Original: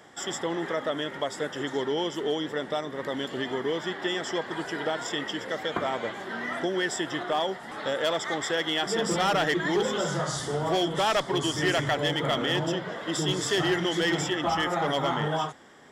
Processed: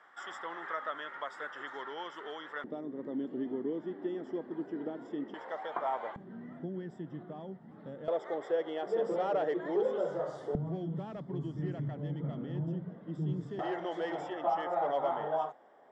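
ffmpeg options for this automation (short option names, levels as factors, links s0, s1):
-af "asetnsamples=n=441:p=0,asendcmd='2.64 bandpass f 280;5.34 bandpass f 860;6.16 bandpass f 170;8.08 bandpass f 510;10.55 bandpass f 170;13.59 bandpass f 670',bandpass=f=1300:t=q:w=2.5:csg=0"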